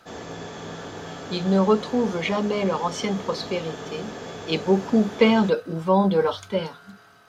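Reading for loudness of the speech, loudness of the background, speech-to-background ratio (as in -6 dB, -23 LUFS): -23.0 LUFS, -36.5 LUFS, 13.5 dB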